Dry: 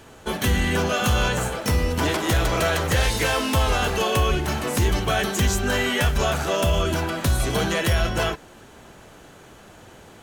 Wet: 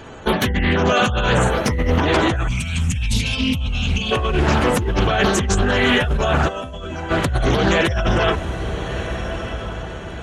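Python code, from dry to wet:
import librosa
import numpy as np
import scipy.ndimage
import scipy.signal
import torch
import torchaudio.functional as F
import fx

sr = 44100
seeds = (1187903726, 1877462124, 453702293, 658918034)

y = fx.high_shelf(x, sr, hz=3800.0, db=-3.5)
y = fx.spec_gate(y, sr, threshold_db=-25, keep='strong')
y = fx.echo_diffused(y, sr, ms=1288, feedback_pct=40, wet_db=-13.0)
y = fx.over_compress(y, sr, threshold_db=-24.0, ratio=-1.0)
y = fx.graphic_eq(y, sr, hz=(500, 2000, 4000, 8000), db=(-12, 4, -9, 8), at=(2.36, 3.13))
y = fx.spec_box(y, sr, start_s=2.48, length_s=1.63, low_hz=260.0, high_hz=2200.0, gain_db=-19)
y = fx.comb_fb(y, sr, f0_hz=260.0, decay_s=0.29, harmonics='all', damping=0.0, mix_pct=80, at=(6.47, 7.1), fade=0.02)
y = fx.doppler_dist(y, sr, depth_ms=0.33)
y = y * librosa.db_to_amplitude(7.0)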